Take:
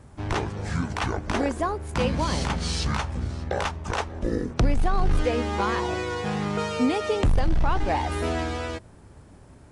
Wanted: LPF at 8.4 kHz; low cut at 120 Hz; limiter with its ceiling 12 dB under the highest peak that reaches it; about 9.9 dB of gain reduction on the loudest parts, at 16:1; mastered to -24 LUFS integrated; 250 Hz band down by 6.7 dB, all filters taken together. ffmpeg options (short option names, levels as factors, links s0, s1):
-af "highpass=120,lowpass=8400,equalizer=f=250:t=o:g=-8.5,acompressor=threshold=0.0251:ratio=16,volume=5.01,alimiter=limit=0.224:level=0:latency=1"